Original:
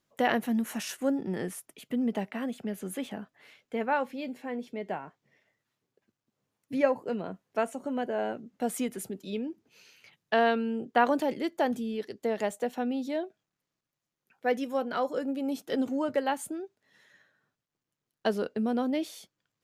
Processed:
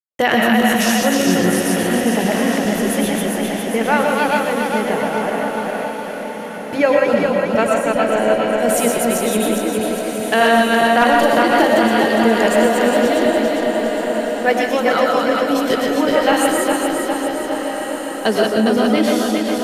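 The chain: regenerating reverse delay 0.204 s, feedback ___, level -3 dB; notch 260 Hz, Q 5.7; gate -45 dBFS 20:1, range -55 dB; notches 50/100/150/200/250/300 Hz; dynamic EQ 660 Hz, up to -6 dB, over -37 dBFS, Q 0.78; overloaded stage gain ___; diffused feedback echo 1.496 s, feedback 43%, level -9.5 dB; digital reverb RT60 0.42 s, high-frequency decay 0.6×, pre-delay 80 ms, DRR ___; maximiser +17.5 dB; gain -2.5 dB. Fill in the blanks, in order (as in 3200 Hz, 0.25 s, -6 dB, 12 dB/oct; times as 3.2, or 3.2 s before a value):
74%, 16.5 dB, 1.5 dB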